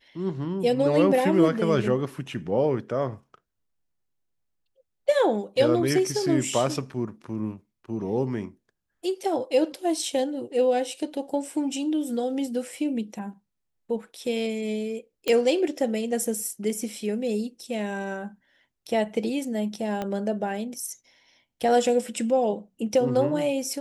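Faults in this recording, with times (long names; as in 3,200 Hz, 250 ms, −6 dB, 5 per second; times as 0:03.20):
0:15.28: click −12 dBFS
0:20.02: click −17 dBFS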